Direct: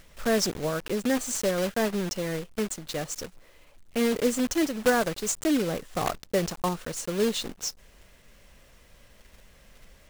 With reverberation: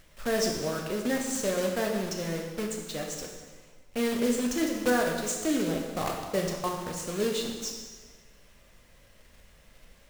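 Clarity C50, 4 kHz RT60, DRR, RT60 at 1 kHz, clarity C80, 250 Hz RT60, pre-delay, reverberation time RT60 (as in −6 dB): 4.0 dB, 1.3 s, 1.0 dB, 1.4 s, 5.5 dB, 1.4 s, 10 ms, 1.4 s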